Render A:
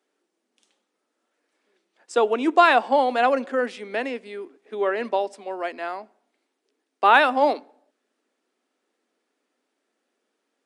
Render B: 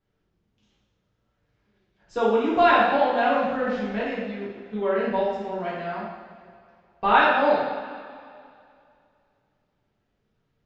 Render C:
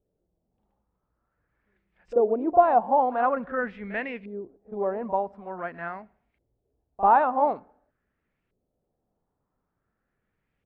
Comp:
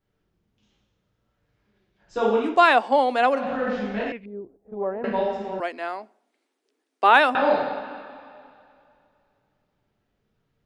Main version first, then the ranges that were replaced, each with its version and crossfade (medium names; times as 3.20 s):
B
2.51–3.41 s: from A, crossfade 0.24 s
4.12–5.04 s: from C
5.60–7.35 s: from A